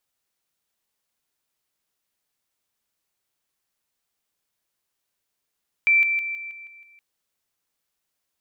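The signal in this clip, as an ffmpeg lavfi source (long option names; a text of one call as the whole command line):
ffmpeg -f lavfi -i "aevalsrc='pow(10,(-14-6*floor(t/0.16))/20)*sin(2*PI*2340*t)':duration=1.12:sample_rate=44100" out.wav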